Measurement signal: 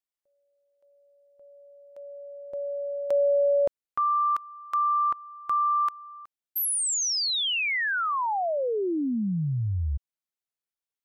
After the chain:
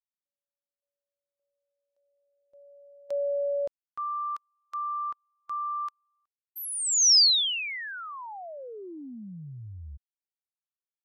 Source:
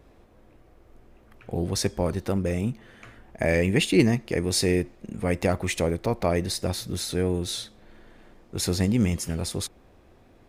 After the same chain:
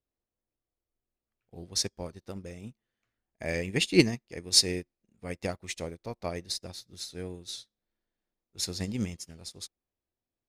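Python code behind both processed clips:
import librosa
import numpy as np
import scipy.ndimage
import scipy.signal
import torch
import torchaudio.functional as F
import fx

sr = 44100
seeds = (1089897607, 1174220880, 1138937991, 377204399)

y = fx.peak_eq(x, sr, hz=5100.0, db=9.5, octaves=1.5)
y = fx.upward_expand(y, sr, threshold_db=-39.0, expansion=2.5)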